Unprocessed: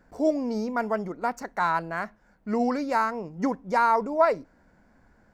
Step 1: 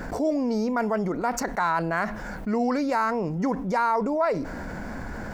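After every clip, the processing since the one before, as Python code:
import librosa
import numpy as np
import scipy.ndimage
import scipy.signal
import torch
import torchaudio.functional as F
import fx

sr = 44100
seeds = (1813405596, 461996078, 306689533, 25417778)

y = fx.env_flatten(x, sr, amount_pct=70)
y = y * librosa.db_to_amplitude(-5.0)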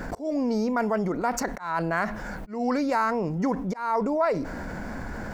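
y = fx.auto_swell(x, sr, attack_ms=230.0)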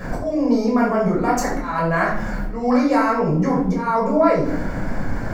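y = fx.room_shoebox(x, sr, seeds[0], volume_m3=790.0, walls='furnished', distance_m=5.8)
y = y * librosa.db_to_amplitude(-1.5)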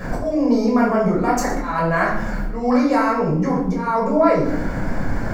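y = fx.rider(x, sr, range_db=3, speed_s=2.0)
y = y + 10.0 ** (-14.5 / 20.0) * np.pad(y, (int(118 * sr / 1000.0), 0))[:len(y)]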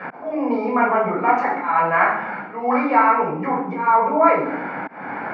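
y = fx.auto_swell(x, sr, attack_ms=235.0)
y = fx.cabinet(y, sr, low_hz=210.0, low_slope=24, high_hz=2900.0, hz=(220.0, 330.0, 570.0, 850.0, 1300.0, 2300.0), db=(-7, -4, -4, 10, 6, 9))
y = y * librosa.db_to_amplitude(-1.0)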